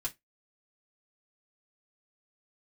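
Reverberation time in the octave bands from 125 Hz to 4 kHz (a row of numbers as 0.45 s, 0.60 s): 0.20 s, 0.20 s, 0.15 s, 0.15 s, 0.15 s, 0.15 s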